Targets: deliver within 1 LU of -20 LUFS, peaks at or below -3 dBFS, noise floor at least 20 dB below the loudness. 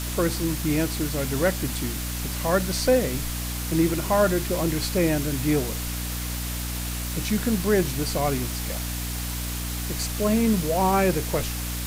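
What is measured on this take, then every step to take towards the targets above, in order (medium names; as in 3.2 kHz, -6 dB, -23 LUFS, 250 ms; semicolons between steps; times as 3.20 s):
hum 60 Hz; highest harmonic 300 Hz; hum level -29 dBFS; noise floor -30 dBFS; noise floor target -45 dBFS; loudness -25.0 LUFS; peak level -9.0 dBFS; loudness target -20.0 LUFS
-> de-hum 60 Hz, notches 5; noise reduction 15 dB, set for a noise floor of -30 dBFS; trim +5 dB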